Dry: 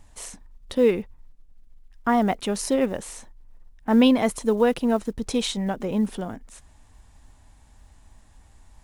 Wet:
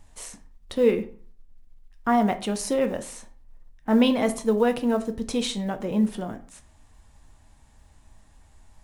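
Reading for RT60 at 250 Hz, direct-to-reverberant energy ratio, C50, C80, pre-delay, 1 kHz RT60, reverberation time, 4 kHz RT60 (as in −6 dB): 0.50 s, 7.0 dB, 14.5 dB, 18.0 dB, 6 ms, 0.40 s, 0.40 s, 0.30 s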